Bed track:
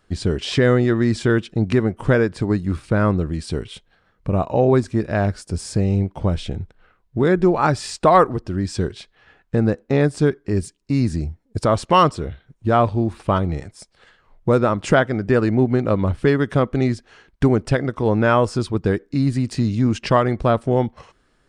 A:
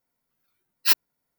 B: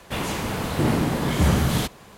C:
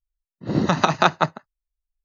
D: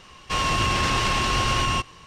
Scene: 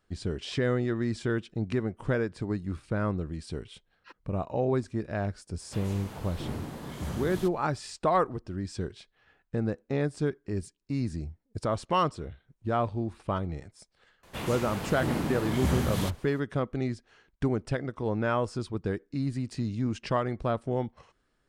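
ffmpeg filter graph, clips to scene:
-filter_complex "[2:a]asplit=2[s0][s1];[0:a]volume=0.266[s2];[1:a]lowpass=1300[s3];[s0]equalizer=f=2300:t=o:w=0.77:g=-2.5[s4];[s3]atrim=end=1.38,asetpts=PTS-STARTPTS,volume=0.15,afade=t=in:d=0.004:c=hsin,afade=t=out:st=1.376:d=0.004:c=hsin,adelay=3190[s5];[s4]atrim=end=2.17,asetpts=PTS-STARTPTS,volume=0.158,afade=t=in:d=0.004:c=hsin,afade=t=out:st=2.166:d=0.004:c=hsin,adelay=247401S[s6];[s1]atrim=end=2.17,asetpts=PTS-STARTPTS,volume=0.376,afade=t=in:d=0.004:c=hsin,afade=t=out:st=2.166:d=0.004:c=hsin,adelay=14230[s7];[s2][s5][s6][s7]amix=inputs=4:normalize=0"

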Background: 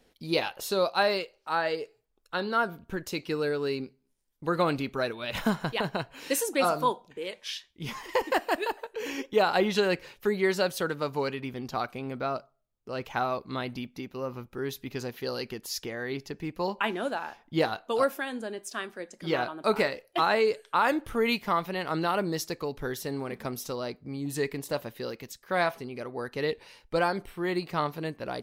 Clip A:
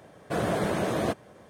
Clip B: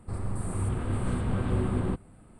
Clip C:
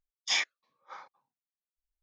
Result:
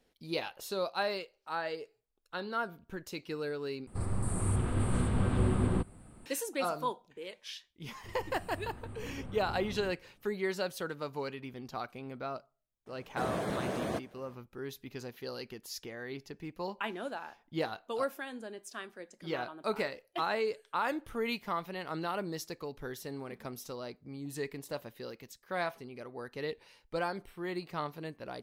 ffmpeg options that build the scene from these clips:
-filter_complex "[2:a]asplit=2[s0][s1];[0:a]volume=0.398[s2];[s0]highshelf=f=4600:g=6[s3];[s2]asplit=2[s4][s5];[s4]atrim=end=3.874[s6];[s3]atrim=end=2.39,asetpts=PTS-STARTPTS,volume=0.891[s7];[s5]atrim=start=6.256[s8];[s1]atrim=end=2.39,asetpts=PTS-STARTPTS,volume=0.15,afade=t=in:d=0.004:c=hsin,afade=t=out:st=2.386:d=0.004:c=hsin,adelay=7960[s9];[1:a]atrim=end=1.49,asetpts=PTS-STARTPTS,volume=0.422,afade=t=in:d=0.004:c=hsin,afade=t=out:st=1.486:d=0.004:c=hsin,adelay=12860[s10];[s6][s7]acrossfade=d=0.004:c1=hsin:c2=hsin[s11];[s11][s8]acrossfade=d=0.004:c1=hsin:c2=hsin[s12];[s12][s9][s10]amix=inputs=3:normalize=0"

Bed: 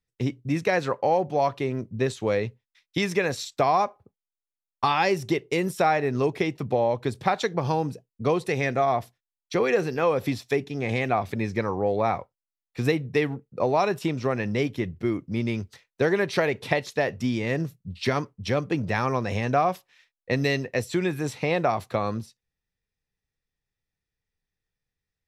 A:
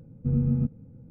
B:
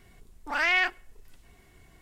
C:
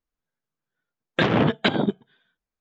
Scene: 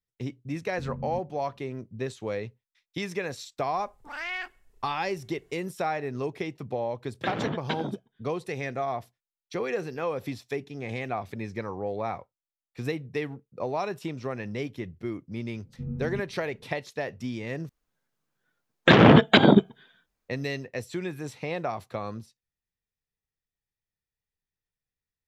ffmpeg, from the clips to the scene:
-filter_complex "[1:a]asplit=2[s0][s1];[3:a]asplit=2[s2][s3];[0:a]volume=0.422[s4];[s3]alimiter=level_in=3.35:limit=0.891:release=50:level=0:latency=1[s5];[s4]asplit=2[s6][s7];[s6]atrim=end=17.694[s8];[s5]atrim=end=2.6,asetpts=PTS-STARTPTS,volume=0.668[s9];[s7]atrim=start=20.286[s10];[s0]atrim=end=1.1,asetpts=PTS-STARTPTS,volume=0.211,afade=t=in:d=0.004:c=hsin,afade=t=out:st=1.096:d=0.004:c=hsin,adelay=530[s11];[2:a]atrim=end=2.01,asetpts=PTS-STARTPTS,volume=0.316,afade=t=in:d=0.004:c=hsin,afade=t=out:st=2.006:d=0.004:c=hsin,adelay=3580[s12];[s2]atrim=end=2.6,asetpts=PTS-STARTPTS,volume=0.266,afade=t=in:d=0.004:c=hsin,afade=t=out:st=2.596:d=0.004:c=hsin,adelay=6050[s13];[s1]atrim=end=1.1,asetpts=PTS-STARTPTS,volume=0.316,afade=t=in:d=0.004:c=hsin,afade=t=out:st=1.096:d=0.004:c=hsin,adelay=15540[s14];[s8][s9]acrossfade=d=0.004:c1=hsin:c2=hsin[s15];[s15][s10]acrossfade=d=0.004:c1=hsin:c2=hsin[s16];[s16][s11][s12][s13][s14]amix=inputs=5:normalize=0"

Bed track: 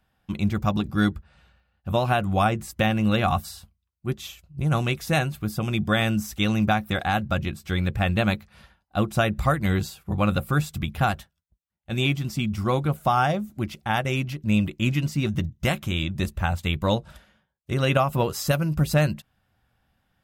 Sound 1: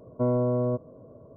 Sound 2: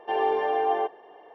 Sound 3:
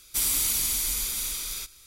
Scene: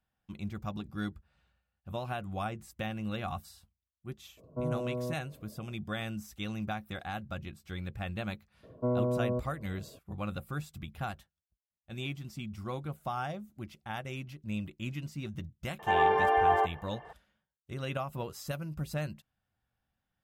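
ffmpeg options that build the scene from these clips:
-filter_complex "[1:a]asplit=2[s0][s1];[0:a]volume=0.188[s2];[2:a]equalizer=f=1500:t=o:w=1.8:g=12[s3];[s0]atrim=end=1.36,asetpts=PTS-STARTPTS,volume=0.335,afade=t=in:d=0.004:c=hsin,afade=t=out:st=1.356:d=0.004:c=hsin,adelay=192717S[s4];[s1]atrim=end=1.36,asetpts=PTS-STARTPTS,volume=0.562,afade=t=in:d=0.004:c=hsin,afade=t=out:st=1.356:d=0.004:c=hsin,adelay=8630[s5];[s3]atrim=end=1.34,asetpts=PTS-STARTPTS,volume=0.531,afade=t=in:d=0.004:c=hsin,afade=t=out:st=1.336:d=0.004:c=hsin,adelay=15790[s6];[s2][s4][s5][s6]amix=inputs=4:normalize=0"

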